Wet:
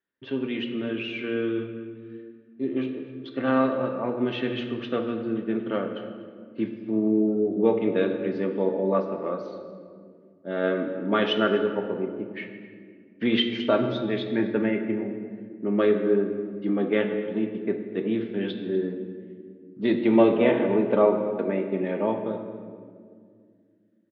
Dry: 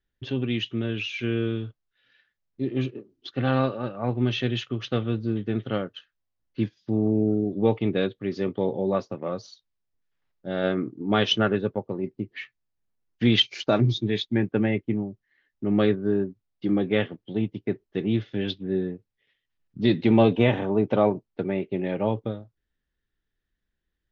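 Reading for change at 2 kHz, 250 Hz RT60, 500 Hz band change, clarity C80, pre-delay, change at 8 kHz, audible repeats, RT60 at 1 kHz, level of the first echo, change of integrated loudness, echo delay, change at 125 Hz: 0.0 dB, 3.3 s, +2.5 dB, 8.0 dB, 3 ms, n/a, 1, 1.7 s, -19.0 dB, 0.0 dB, 0.247 s, -9.0 dB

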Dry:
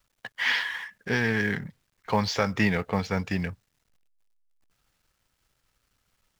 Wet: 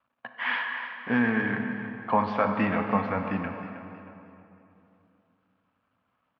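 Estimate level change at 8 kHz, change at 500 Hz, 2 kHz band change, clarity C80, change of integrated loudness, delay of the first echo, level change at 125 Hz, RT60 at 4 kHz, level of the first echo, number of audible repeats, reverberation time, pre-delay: under -30 dB, 0.0 dB, -1.5 dB, 6.0 dB, -0.5 dB, 0.316 s, -4.5 dB, 2.2 s, -13.0 dB, 3, 3.0 s, 19 ms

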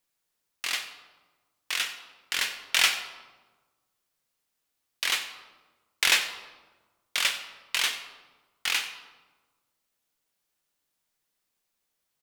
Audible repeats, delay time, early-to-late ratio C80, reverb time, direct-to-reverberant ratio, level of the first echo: 1, 92 ms, 10.5 dB, 1.3 s, 6.5 dB, -17.5 dB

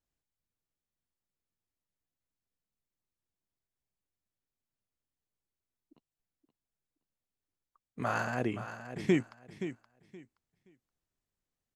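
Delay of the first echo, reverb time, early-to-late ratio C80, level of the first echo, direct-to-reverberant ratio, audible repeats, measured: 0.523 s, none, none, -11.0 dB, none, 2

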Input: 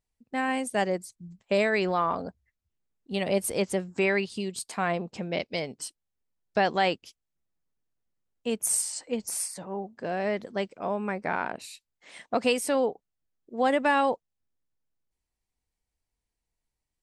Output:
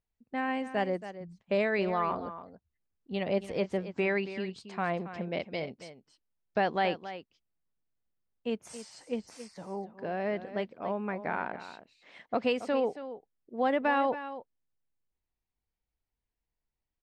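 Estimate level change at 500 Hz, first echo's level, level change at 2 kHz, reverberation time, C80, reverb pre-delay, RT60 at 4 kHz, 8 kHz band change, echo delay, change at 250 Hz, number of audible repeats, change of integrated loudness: -3.5 dB, -12.5 dB, -4.5 dB, none, none, none, none, -23.0 dB, 0.276 s, -3.0 dB, 1, -4.0 dB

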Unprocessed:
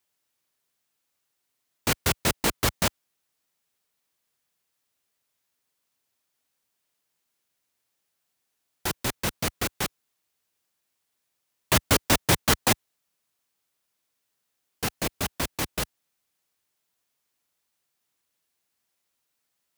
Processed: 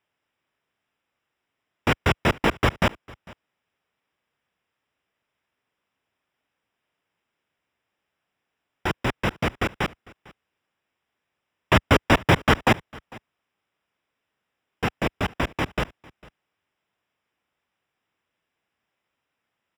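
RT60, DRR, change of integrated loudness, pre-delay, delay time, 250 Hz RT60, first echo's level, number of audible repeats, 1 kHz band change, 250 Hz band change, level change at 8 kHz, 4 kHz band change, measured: none, none, +2.0 dB, none, 0.451 s, none, -23.5 dB, 1, +5.5 dB, +5.5 dB, -13.0 dB, -1.5 dB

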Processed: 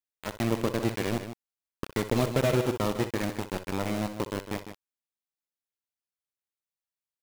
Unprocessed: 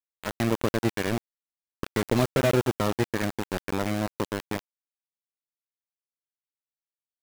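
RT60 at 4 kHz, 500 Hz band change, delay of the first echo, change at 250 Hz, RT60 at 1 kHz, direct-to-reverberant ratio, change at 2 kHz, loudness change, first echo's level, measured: none, -2.0 dB, 62 ms, -2.0 dB, none, none, -3.5 dB, -2.0 dB, -12.0 dB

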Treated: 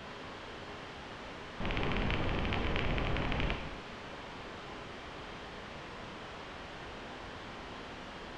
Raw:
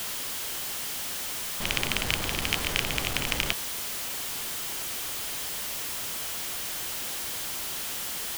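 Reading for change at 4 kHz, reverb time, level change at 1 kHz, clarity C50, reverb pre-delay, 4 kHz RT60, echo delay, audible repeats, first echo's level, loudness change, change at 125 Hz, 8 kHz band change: -13.0 dB, 0.95 s, -2.5 dB, 6.0 dB, 12 ms, 0.90 s, none, none, none, -10.0 dB, +1.0 dB, -29.5 dB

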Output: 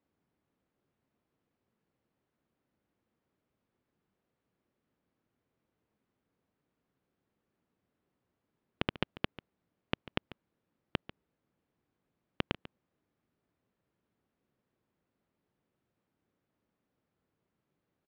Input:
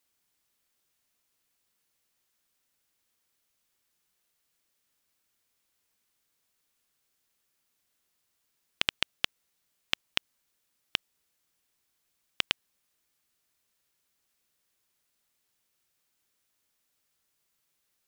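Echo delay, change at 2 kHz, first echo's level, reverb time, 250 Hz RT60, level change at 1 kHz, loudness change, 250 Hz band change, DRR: 0.143 s, -7.5 dB, -16.0 dB, none, none, 0.0 dB, -7.0 dB, +10.5 dB, none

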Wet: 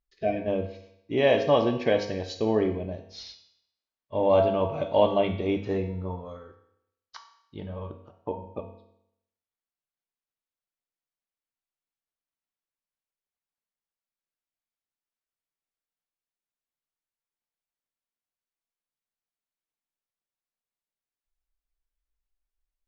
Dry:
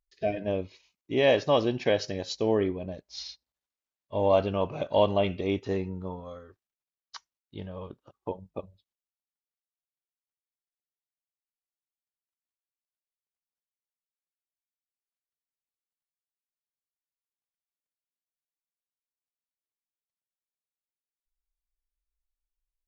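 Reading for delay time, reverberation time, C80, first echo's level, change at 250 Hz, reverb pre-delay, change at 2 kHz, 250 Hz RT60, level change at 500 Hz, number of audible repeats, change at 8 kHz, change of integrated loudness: none, 0.75 s, 11.5 dB, none, +2.0 dB, 4 ms, +0.5 dB, 0.75 s, +2.0 dB, none, n/a, +2.0 dB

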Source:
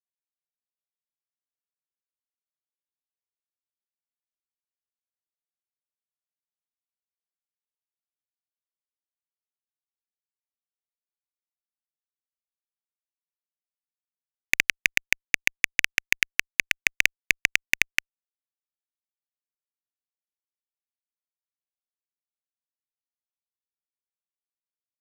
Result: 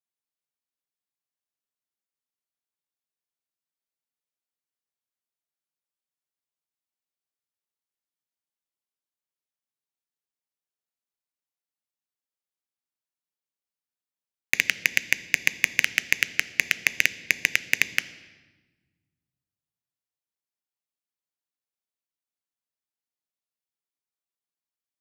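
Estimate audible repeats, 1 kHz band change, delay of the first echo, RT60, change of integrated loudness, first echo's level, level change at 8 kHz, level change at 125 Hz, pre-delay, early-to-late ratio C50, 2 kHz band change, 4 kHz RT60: none, 0.0 dB, none, 1.2 s, 0.0 dB, none, +0.5 dB, 0.0 dB, 7 ms, 15.0 dB, 0.0 dB, 1.1 s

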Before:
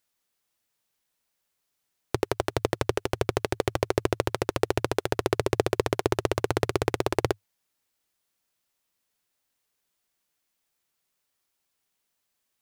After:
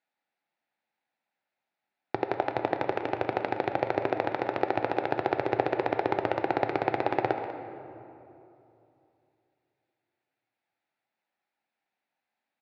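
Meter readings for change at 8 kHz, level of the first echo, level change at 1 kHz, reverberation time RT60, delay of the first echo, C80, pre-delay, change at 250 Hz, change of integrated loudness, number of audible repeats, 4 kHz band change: under -25 dB, -13.0 dB, +3.5 dB, 2.9 s, 0.194 s, 7.0 dB, 7 ms, -2.0 dB, -1.5 dB, 1, -9.5 dB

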